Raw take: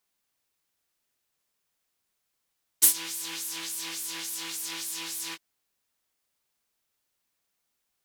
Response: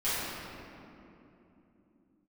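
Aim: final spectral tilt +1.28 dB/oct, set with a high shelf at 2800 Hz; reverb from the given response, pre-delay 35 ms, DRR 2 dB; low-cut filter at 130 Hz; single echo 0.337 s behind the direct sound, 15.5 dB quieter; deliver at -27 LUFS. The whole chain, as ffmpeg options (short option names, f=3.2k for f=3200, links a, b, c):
-filter_complex "[0:a]highpass=130,highshelf=f=2.8k:g=5,aecho=1:1:337:0.168,asplit=2[a][b];[1:a]atrim=start_sample=2205,adelay=35[c];[b][c]afir=irnorm=-1:irlink=0,volume=-12.5dB[d];[a][d]amix=inputs=2:normalize=0,volume=-4.5dB"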